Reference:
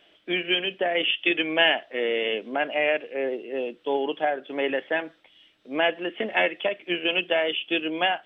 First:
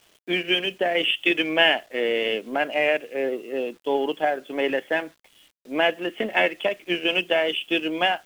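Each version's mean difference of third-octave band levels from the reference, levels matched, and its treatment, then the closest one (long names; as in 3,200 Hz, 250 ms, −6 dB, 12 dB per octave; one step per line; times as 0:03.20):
4.5 dB: low-shelf EQ 150 Hz +6 dB
in parallel at −8 dB: dead-zone distortion −36 dBFS
on the sum: bit reduction 9 bits
level −1 dB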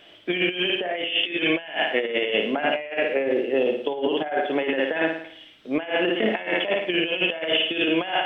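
6.5 dB: parametric band 110 Hz +6 dB 0.71 octaves
on a send: flutter between parallel walls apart 9.5 metres, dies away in 0.59 s
on the sum: compressor whose output falls as the input rises −27 dBFS, ratio −0.5
level +4 dB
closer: first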